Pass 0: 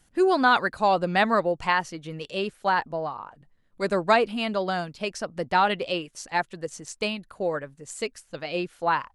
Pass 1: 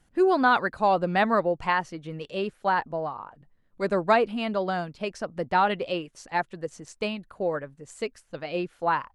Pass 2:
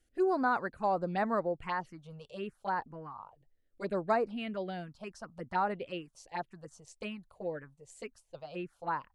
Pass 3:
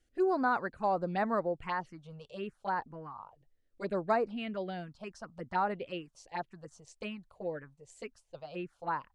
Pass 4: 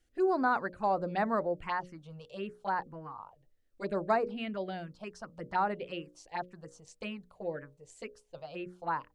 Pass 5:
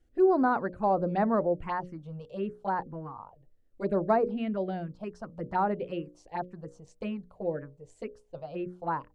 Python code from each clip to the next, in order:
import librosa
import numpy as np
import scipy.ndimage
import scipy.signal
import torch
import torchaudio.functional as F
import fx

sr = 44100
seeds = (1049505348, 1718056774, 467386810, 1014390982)

y1 = fx.high_shelf(x, sr, hz=3100.0, db=-9.5)
y2 = fx.env_phaser(y1, sr, low_hz=160.0, high_hz=3200.0, full_db=-19.5)
y2 = F.gain(torch.from_numpy(y2), -7.5).numpy()
y3 = scipy.signal.sosfilt(scipy.signal.butter(2, 8300.0, 'lowpass', fs=sr, output='sos'), y2)
y4 = fx.hum_notches(y3, sr, base_hz=60, count=10)
y4 = F.gain(torch.from_numpy(y4), 1.0).numpy()
y5 = fx.tilt_shelf(y4, sr, db=7.5, hz=1200.0)